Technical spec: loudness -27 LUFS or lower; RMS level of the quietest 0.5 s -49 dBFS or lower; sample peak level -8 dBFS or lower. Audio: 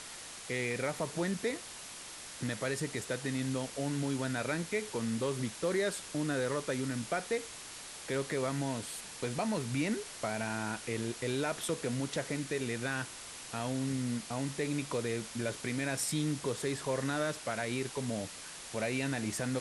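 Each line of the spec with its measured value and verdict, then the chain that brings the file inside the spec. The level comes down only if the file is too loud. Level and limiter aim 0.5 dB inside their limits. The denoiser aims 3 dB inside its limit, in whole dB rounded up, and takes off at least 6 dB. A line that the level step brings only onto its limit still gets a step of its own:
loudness -35.5 LUFS: pass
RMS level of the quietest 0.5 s -47 dBFS: fail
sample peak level -20.5 dBFS: pass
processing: noise reduction 6 dB, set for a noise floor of -47 dBFS

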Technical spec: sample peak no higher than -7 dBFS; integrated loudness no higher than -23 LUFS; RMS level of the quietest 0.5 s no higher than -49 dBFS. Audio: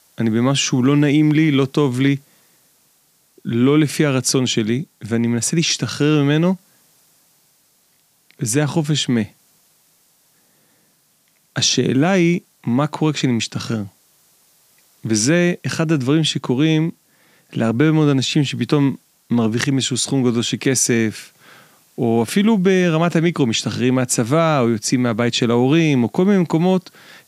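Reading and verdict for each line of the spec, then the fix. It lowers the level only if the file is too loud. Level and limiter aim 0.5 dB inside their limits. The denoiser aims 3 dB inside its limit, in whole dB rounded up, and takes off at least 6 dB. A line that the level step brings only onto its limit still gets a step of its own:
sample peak -2.0 dBFS: fail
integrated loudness -17.5 LUFS: fail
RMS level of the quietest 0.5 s -60 dBFS: pass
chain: trim -6 dB

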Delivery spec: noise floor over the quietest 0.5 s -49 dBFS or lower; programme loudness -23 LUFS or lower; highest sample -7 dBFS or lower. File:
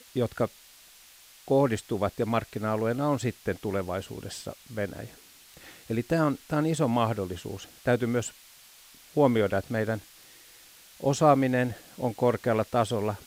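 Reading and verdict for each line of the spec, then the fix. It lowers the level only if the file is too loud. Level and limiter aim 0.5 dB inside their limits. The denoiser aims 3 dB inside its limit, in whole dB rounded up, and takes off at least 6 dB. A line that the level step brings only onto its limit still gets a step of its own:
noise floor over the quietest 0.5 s -54 dBFS: pass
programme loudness -28.0 LUFS: pass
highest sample -8.0 dBFS: pass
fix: none needed

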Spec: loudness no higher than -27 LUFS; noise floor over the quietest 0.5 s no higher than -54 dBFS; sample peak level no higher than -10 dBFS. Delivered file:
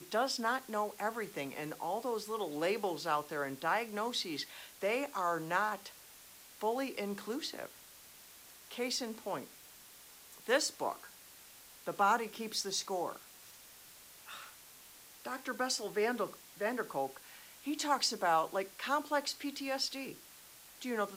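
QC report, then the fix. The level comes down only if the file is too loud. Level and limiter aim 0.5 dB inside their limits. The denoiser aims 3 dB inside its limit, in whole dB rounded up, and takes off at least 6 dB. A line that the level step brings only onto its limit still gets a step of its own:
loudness -36.0 LUFS: pass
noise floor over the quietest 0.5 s -56 dBFS: pass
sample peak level -17.5 dBFS: pass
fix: none needed

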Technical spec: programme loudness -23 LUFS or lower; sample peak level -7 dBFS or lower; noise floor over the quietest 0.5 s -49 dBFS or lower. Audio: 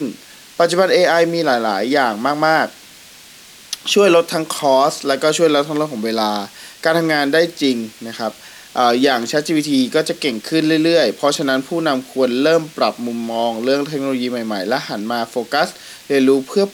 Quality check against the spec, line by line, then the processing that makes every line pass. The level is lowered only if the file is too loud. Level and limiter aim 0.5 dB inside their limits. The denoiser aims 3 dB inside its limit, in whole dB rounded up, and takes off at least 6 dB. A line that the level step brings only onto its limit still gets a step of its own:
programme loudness -17.0 LUFS: fail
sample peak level -2.5 dBFS: fail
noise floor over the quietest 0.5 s -42 dBFS: fail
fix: noise reduction 6 dB, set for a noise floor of -42 dBFS; trim -6.5 dB

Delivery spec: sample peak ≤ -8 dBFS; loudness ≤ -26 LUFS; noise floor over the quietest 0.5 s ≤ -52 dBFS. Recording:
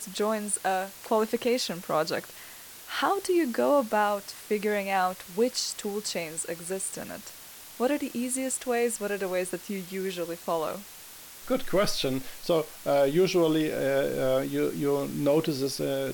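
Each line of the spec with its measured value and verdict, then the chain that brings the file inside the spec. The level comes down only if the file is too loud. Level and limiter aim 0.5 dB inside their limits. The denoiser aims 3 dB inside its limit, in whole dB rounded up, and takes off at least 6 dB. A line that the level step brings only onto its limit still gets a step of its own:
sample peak -13.0 dBFS: pass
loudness -28.0 LUFS: pass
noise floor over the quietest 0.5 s -46 dBFS: fail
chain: noise reduction 9 dB, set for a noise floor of -46 dBFS

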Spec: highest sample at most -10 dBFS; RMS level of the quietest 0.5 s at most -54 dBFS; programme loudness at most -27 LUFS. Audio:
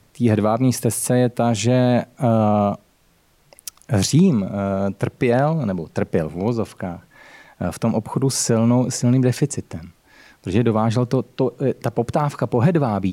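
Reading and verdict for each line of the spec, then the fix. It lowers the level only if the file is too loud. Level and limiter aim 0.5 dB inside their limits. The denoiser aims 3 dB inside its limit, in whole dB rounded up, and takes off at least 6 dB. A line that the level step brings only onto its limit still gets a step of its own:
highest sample -6.0 dBFS: fail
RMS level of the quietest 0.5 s -59 dBFS: pass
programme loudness -20.0 LUFS: fail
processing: trim -7.5 dB

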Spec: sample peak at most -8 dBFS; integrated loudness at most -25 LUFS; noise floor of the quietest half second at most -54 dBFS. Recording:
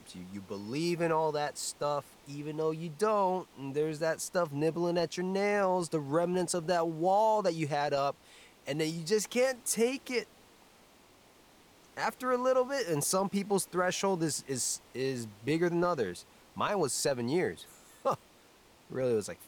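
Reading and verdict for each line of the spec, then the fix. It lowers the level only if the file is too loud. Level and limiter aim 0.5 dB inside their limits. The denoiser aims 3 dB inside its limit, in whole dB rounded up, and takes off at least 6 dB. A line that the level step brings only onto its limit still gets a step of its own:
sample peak -18.0 dBFS: pass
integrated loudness -31.5 LUFS: pass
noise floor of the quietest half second -60 dBFS: pass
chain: none needed

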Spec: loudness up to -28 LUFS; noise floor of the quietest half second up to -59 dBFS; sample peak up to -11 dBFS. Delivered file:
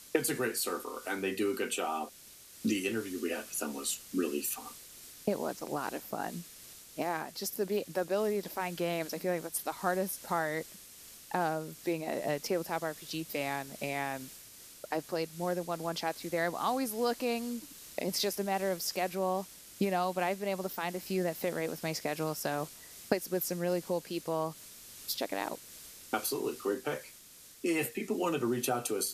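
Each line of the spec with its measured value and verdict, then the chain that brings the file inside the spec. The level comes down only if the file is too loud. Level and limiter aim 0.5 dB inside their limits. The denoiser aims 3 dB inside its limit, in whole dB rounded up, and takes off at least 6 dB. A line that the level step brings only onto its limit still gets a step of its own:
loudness -34.5 LUFS: pass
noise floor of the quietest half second -55 dBFS: fail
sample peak -13.0 dBFS: pass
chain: noise reduction 7 dB, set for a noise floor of -55 dBFS

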